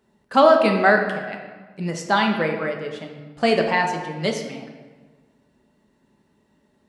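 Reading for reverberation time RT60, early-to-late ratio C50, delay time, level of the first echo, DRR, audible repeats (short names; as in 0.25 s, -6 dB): 1.4 s, 5.5 dB, none, none, 2.0 dB, none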